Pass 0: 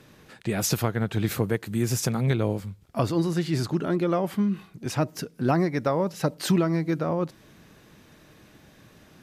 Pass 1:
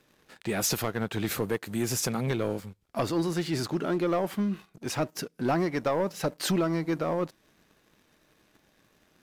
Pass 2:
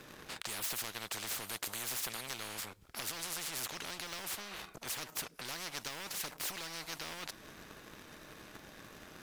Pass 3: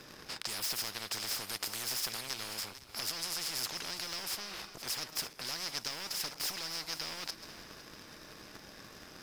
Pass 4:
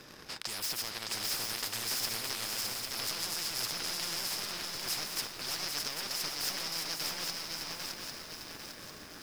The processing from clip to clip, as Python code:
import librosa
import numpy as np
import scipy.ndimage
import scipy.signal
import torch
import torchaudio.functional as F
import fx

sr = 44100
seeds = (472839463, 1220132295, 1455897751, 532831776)

y1 = fx.peak_eq(x, sr, hz=110.0, db=-8.0, octaves=1.9)
y1 = fx.leveller(y1, sr, passes=2)
y1 = y1 * 10.0 ** (-7.0 / 20.0)
y2 = fx.peak_eq(y1, sr, hz=1300.0, db=3.0, octaves=0.77)
y2 = fx.spectral_comp(y2, sr, ratio=10.0)
y2 = y2 * 10.0 ** (-3.5 / 20.0)
y3 = fx.reverse_delay_fb(y2, sr, ms=254, feedback_pct=52, wet_db=-13)
y3 = fx.peak_eq(y3, sr, hz=5100.0, db=12.0, octaves=0.28)
y4 = y3 + 10.0 ** (-3.5 / 20.0) * np.pad(y3, (int(613 * sr / 1000.0), 0))[:len(y3)]
y4 = fx.echo_crushed(y4, sr, ms=799, feedback_pct=55, bits=8, wet_db=-4.5)